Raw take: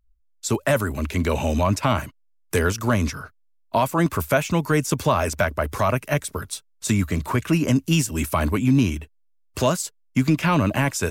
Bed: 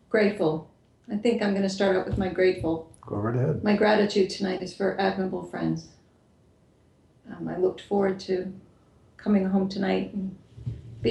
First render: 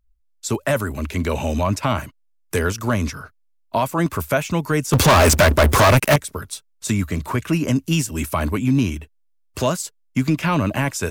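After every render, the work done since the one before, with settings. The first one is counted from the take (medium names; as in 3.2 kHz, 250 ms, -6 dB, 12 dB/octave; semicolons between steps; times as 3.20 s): 4.93–6.16 s: waveshaping leveller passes 5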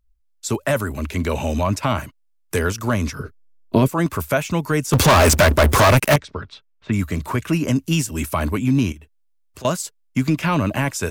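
3.19–3.89 s: resonant low shelf 540 Hz +10.5 dB, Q 3; 6.17–6.92 s: low-pass 5.5 kHz -> 2.5 kHz 24 dB/octave; 8.92–9.65 s: compression 2.5:1, threshold -43 dBFS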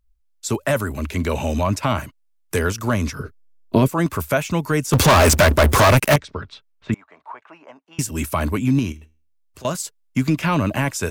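6.94–7.99 s: ladder band-pass 930 Hz, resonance 55%; 8.79–9.75 s: feedback comb 77 Hz, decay 0.39 s, mix 40%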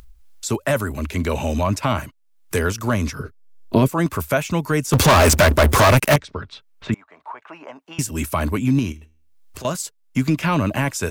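upward compressor, threshold -29 dBFS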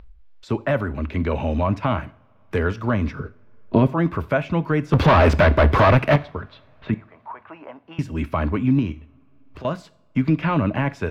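distance through air 350 m; two-slope reverb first 0.47 s, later 4.7 s, from -28 dB, DRR 14.5 dB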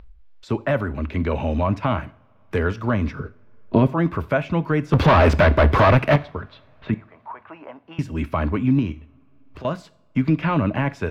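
no audible change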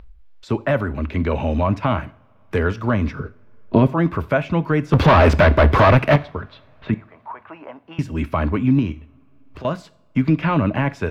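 trim +2 dB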